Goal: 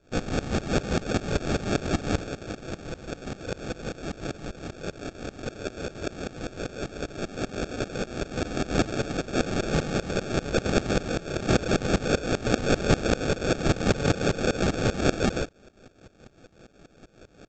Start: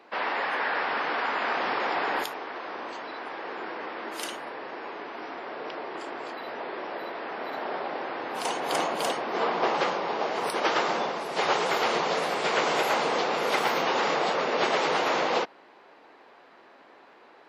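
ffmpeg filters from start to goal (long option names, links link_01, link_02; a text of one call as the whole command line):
ffmpeg -i in.wav -af "aresample=16000,acrusher=samples=16:mix=1:aa=0.000001,aresample=44100,aeval=exprs='val(0)*pow(10,-20*if(lt(mod(-5.1*n/s,1),2*abs(-5.1)/1000),1-mod(-5.1*n/s,1)/(2*abs(-5.1)/1000),(mod(-5.1*n/s,1)-2*abs(-5.1)/1000)/(1-2*abs(-5.1)/1000))/20)':channel_layout=same,volume=8dB" out.wav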